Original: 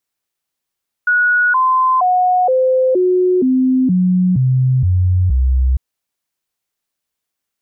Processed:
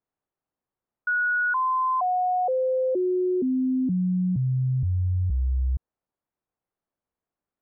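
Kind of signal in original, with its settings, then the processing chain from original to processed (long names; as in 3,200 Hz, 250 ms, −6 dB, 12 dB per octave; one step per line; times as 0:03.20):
stepped sweep 1,460 Hz down, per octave 2, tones 10, 0.47 s, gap 0.00 s −10 dBFS
low-pass filter 1,000 Hz 12 dB per octave
brickwall limiter −20.5 dBFS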